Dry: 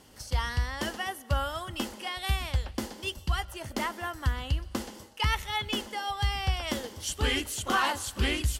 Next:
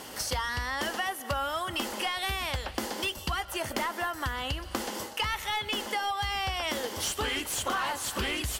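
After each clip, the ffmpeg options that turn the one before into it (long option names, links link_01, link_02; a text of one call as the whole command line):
ffmpeg -i in.wav -filter_complex "[0:a]aemphasis=mode=production:type=50fm,asplit=2[link_01][link_02];[link_02]highpass=frequency=720:poles=1,volume=18dB,asoftclip=type=tanh:threshold=-12.5dB[link_03];[link_01][link_03]amix=inputs=2:normalize=0,lowpass=frequency=1500:poles=1,volume=-6dB,acompressor=threshold=-35dB:ratio=6,volume=6dB" out.wav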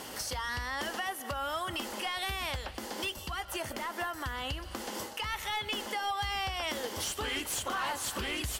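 ffmpeg -i in.wav -af "alimiter=level_in=1.5dB:limit=-24dB:level=0:latency=1:release=320,volume=-1.5dB" out.wav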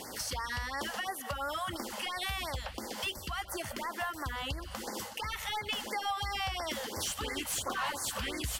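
ffmpeg -i in.wav -af "afftfilt=real='re*(1-between(b*sr/1024,290*pow(3200/290,0.5+0.5*sin(2*PI*2.9*pts/sr))/1.41,290*pow(3200/290,0.5+0.5*sin(2*PI*2.9*pts/sr))*1.41))':imag='im*(1-between(b*sr/1024,290*pow(3200/290,0.5+0.5*sin(2*PI*2.9*pts/sr))/1.41,290*pow(3200/290,0.5+0.5*sin(2*PI*2.9*pts/sr))*1.41))':win_size=1024:overlap=0.75" out.wav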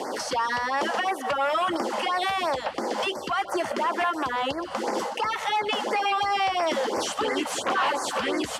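ffmpeg -i in.wav -filter_complex "[0:a]acrossover=split=270|1200|3900[link_01][link_02][link_03][link_04];[link_02]aeval=exprs='0.0447*sin(PI/2*2.82*val(0)/0.0447)':channel_layout=same[link_05];[link_01][link_05][link_03][link_04]amix=inputs=4:normalize=0,highpass=200,lowpass=7300,volume=5dB" out.wav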